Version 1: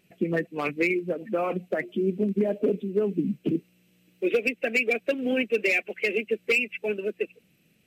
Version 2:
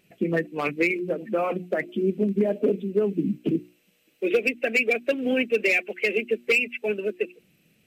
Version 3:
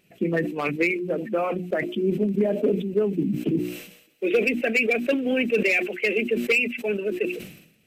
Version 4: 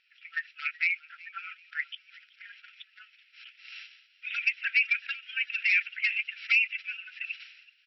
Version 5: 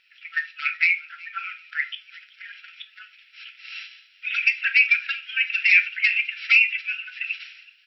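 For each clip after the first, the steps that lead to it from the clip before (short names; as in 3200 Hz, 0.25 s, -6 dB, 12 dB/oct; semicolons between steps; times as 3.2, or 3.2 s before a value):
notches 60/120/180/240/300/360 Hz; gain +2 dB
sustainer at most 77 dB/s
frequency-shifting echo 0.378 s, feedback 34%, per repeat +90 Hz, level -22 dB; FFT band-pass 1300–5700 Hz; gain -1.5 dB
shoebox room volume 220 m³, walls furnished, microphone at 0.76 m; gain +7 dB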